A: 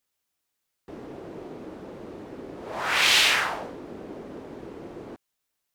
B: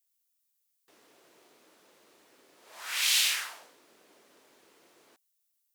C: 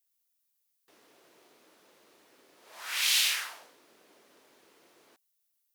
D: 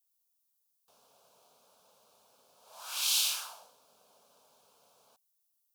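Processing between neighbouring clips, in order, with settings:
first difference; notch filter 800 Hz, Q 26
parametric band 7,700 Hz −2.5 dB 0.44 octaves
phaser with its sweep stopped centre 800 Hz, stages 4

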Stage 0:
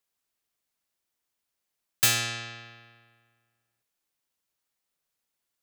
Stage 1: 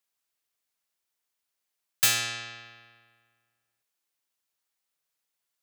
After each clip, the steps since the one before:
low-shelf EQ 460 Hz −7.5 dB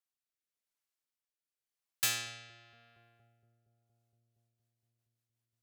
feedback echo with a low-pass in the loop 233 ms, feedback 82%, low-pass 990 Hz, level −13.5 dB
rotating-speaker cabinet horn 0.9 Hz, later 5.5 Hz, at 0:03.83
level −7.5 dB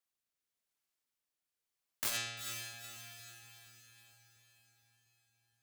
feedback delay with all-pass diffusion 467 ms, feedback 49%, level −11.5 dB
wrap-around overflow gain 28 dB
saturating transformer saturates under 530 Hz
level +2 dB

